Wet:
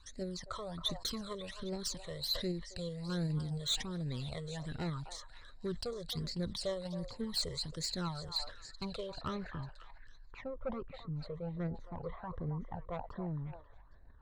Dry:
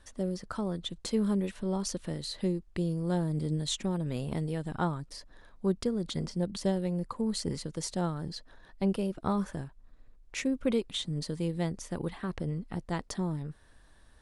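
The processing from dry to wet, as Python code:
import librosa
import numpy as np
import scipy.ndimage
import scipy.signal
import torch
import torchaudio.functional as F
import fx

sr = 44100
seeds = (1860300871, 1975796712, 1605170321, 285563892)

p1 = fx.graphic_eq_31(x, sr, hz=(200, 315, 1000, 4000), db=(-10, -6, 4, 12))
p2 = fx.level_steps(p1, sr, step_db=11)
p3 = p1 + (p2 * 10.0 ** (0.5 / 20.0))
p4 = fx.filter_sweep_lowpass(p3, sr, from_hz=7500.0, to_hz=960.0, start_s=8.81, end_s=9.91, q=1.3)
p5 = 10.0 ** (-22.5 / 20.0) * np.tanh(p4 / 10.0 ** (-22.5 / 20.0))
p6 = fx.phaser_stages(p5, sr, stages=12, low_hz=260.0, high_hz=1100.0, hz=1.3, feedback_pct=25)
p7 = fx.echo_stepped(p6, sr, ms=270, hz=840.0, octaves=1.4, feedback_pct=70, wet_db=-7.0)
p8 = fx.sustainer(p7, sr, db_per_s=110.0)
y = p8 * 10.0 ** (-5.0 / 20.0)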